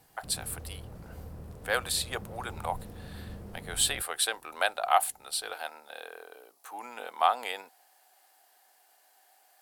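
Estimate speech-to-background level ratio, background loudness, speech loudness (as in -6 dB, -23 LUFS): 15.0 dB, -46.0 LUFS, -31.0 LUFS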